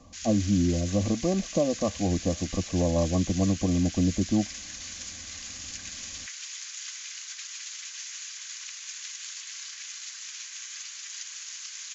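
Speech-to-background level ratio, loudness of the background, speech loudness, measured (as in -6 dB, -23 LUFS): 10.0 dB, -37.0 LUFS, -27.0 LUFS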